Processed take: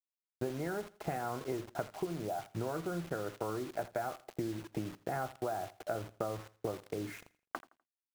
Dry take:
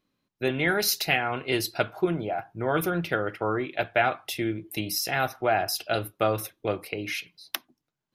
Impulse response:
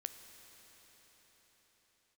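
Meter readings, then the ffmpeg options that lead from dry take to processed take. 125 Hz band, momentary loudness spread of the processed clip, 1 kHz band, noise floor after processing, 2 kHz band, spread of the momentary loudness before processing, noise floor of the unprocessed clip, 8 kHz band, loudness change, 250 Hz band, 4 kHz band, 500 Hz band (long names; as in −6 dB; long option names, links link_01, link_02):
−8.5 dB, 4 LU, −11.0 dB, below −85 dBFS, −18.5 dB, 8 LU, −83 dBFS, −17.5 dB, −12.0 dB, −9.0 dB, −21.5 dB, −10.0 dB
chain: -af "lowpass=frequency=1300:width=0.5412,lowpass=frequency=1300:width=1.3066,agate=range=-33dB:threshold=-48dB:ratio=3:detection=peak,acompressor=threshold=-39dB:ratio=10,acrusher=bits=8:mix=0:aa=0.000001,aecho=1:1:83|166|249:0.106|0.0328|0.0102,volume=5dB"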